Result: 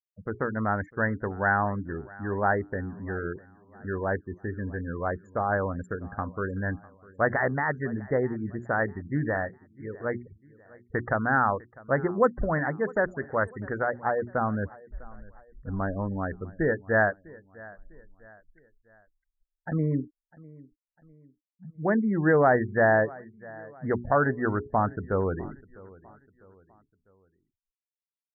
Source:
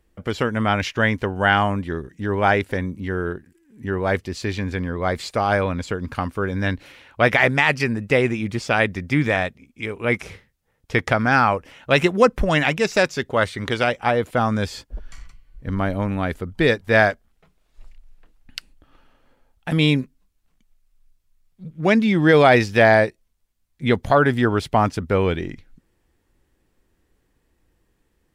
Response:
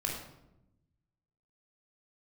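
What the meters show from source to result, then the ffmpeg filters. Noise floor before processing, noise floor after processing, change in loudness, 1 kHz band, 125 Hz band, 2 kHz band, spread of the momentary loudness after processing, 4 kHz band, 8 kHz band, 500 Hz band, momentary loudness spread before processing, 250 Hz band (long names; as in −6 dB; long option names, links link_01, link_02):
−68 dBFS, below −85 dBFS, −7.5 dB, −6.5 dB, −7.5 dB, −8.0 dB, 16 LU, below −40 dB, below −30 dB, −7.0 dB, 14 LU, −7.5 dB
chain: -af "bandreject=frequency=60:width_type=h:width=6,bandreject=frequency=120:width_type=h:width=6,bandreject=frequency=180:width_type=h:width=6,bandreject=frequency=240:width_type=h:width=6,bandreject=frequency=300:width_type=h:width=6,bandreject=frequency=360:width_type=h:width=6,bandreject=frequency=420:width_type=h:width=6,afftfilt=real='re*gte(hypot(re,im),0.0501)':imag='im*gte(hypot(re,im),0.0501)':win_size=1024:overlap=0.75,asuperstop=centerf=3800:order=20:qfactor=0.67,highshelf=frequency=3500:gain=7,aecho=1:1:651|1302|1953:0.0794|0.0334|0.014,volume=-7dB"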